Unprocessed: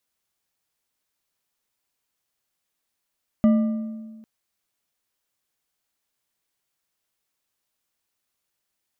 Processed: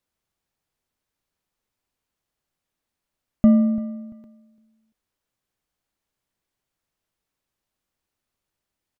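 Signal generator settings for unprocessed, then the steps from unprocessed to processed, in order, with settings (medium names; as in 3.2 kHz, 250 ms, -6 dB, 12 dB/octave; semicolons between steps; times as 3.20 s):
metal hit bar, length 0.80 s, lowest mode 221 Hz, decay 1.53 s, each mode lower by 11 dB, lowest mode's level -12 dB
tilt EQ -2 dB/octave; feedback delay 341 ms, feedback 26%, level -18 dB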